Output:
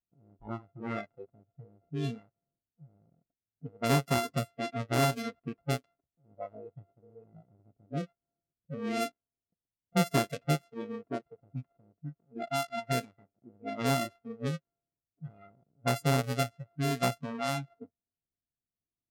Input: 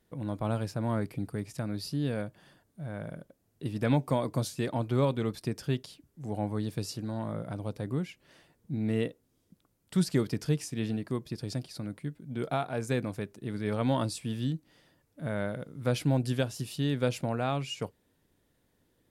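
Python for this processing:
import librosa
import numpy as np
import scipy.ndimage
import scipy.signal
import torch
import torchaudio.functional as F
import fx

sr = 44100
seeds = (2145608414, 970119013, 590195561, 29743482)

y = np.r_[np.sort(x[:len(x) // 64 * 64].reshape(-1, 64), axis=1).ravel(), x[len(x) // 64 * 64:]]
y = fx.noise_reduce_blind(y, sr, reduce_db=25)
y = fx.env_lowpass(y, sr, base_hz=390.0, full_db=-26.5)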